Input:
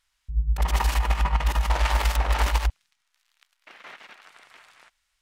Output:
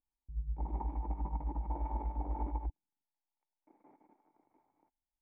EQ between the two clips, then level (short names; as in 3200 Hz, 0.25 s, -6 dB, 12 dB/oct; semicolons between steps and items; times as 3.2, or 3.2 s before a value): vocal tract filter u; +1.0 dB